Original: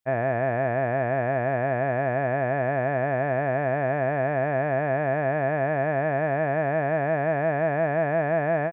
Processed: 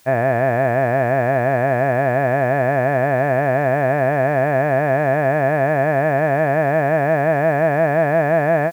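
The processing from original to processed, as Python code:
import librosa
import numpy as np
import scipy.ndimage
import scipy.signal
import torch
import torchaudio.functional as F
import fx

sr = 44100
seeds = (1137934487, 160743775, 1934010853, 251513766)

y = fx.quant_dither(x, sr, seeds[0], bits=10, dither='triangular')
y = F.gain(torch.from_numpy(y), 7.5).numpy()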